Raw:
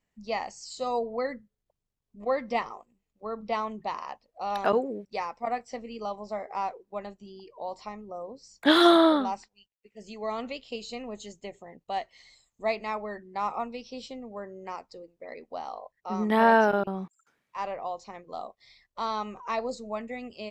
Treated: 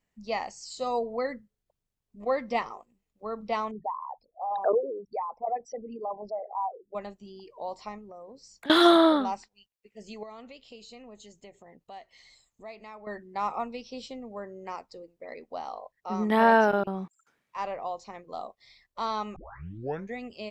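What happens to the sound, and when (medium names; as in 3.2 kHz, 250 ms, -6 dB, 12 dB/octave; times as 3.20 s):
3.71–6.95 s: resonances exaggerated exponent 3
7.98–8.70 s: compression 3:1, threshold -44 dBFS
10.23–13.07 s: compression 2:1, threshold -52 dBFS
19.36 s: tape start 0.80 s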